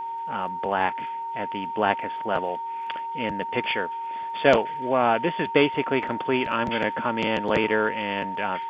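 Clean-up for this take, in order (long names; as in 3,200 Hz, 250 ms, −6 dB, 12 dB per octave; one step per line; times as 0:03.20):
click removal
hum removal 384.6 Hz, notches 37
notch filter 920 Hz, Q 30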